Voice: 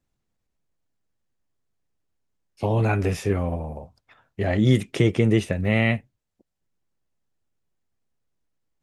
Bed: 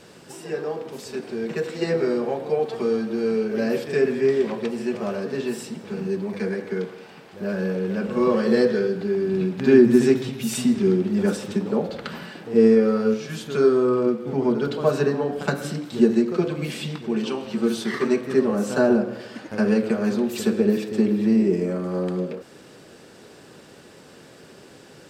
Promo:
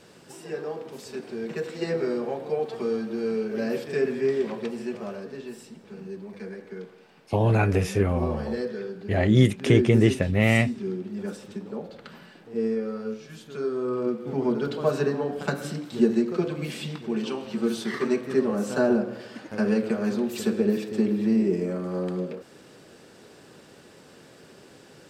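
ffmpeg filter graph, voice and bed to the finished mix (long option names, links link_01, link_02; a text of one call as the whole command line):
ffmpeg -i stem1.wav -i stem2.wav -filter_complex "[0:a]adelay=4700,volume=0.5dB[link_01];[1:a]volume=3.5dB,afade=type=out:start_time=4.67:duration=0.74:silence=0.446684,afade=type=in:start_time=13.68:duration=0.61:silence=0.398107[link_02];[link_01][link_02]amix=inputs=2:normalize=0" out.wav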